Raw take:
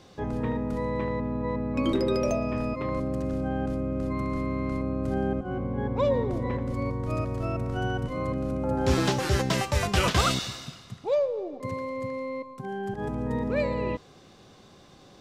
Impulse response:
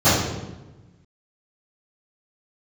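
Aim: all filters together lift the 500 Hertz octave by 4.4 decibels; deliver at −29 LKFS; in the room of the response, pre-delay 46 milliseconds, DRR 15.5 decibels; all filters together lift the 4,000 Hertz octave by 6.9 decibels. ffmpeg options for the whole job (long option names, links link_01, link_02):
-filter_complex "[0:a]equalizer=frequency=500:width_type=o:gain=5,equalizer=frequency=4000:width_type=o:gain=8.5,asplit=2[link_01][link_02];[1:a]atrim=start_sample=2205,adelay=46[link_03];[link_02][link_03]afir=irnorm=-1:irlink=0,volume=-39.5dB[link_04];[link_01][link_04]amix=inputs=2:normalize=0,volume=-3.5dB"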